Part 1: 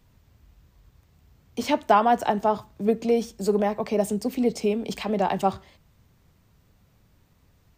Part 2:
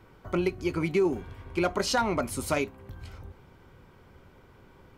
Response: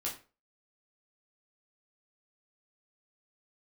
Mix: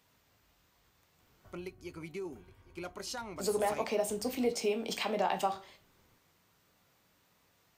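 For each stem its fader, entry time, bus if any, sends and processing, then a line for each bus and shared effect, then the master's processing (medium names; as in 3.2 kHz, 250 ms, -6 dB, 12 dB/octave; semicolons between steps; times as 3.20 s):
-3.5 dB, 0.00 s, muted 1.53–3.36 s, send -5 dB, no echo send, high-pass 690 Hz 6 dB/octave; compression, threshold -26 dBFS, peak gain reduction 10.5 dB
-16.5 dB, 1.20 s, no send, echo send -20.5 dB, treble shelf 5 kHz +11 dB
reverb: on, RT60 0.35 s, pre-delay 9 ms
echo: delay 817 ms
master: none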